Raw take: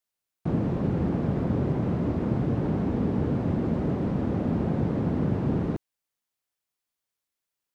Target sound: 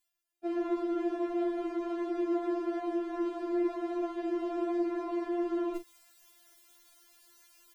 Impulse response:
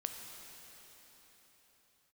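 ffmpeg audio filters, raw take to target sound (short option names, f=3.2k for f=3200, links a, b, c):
-filter_complex "[0:a]areverse,acompressor=mode=upward:threshold=-37dB:ratio=2.5,areverse,asplit=2[a][b];[b]adelay=40,volume=-10.5dB[c];[a][c]amix=inputs=2:normalize=0,afftfilt=real='re*4*eq(mod(b,16),0)':imag='im*4*eq(mod(b,16),0)':win_size=2048:overlap=0.75"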